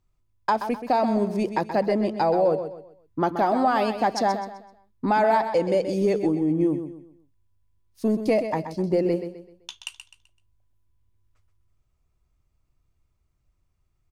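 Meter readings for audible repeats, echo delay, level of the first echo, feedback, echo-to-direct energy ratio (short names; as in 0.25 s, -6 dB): 3, 0.128 s, -9.5 dB, 34%, -9.0 dB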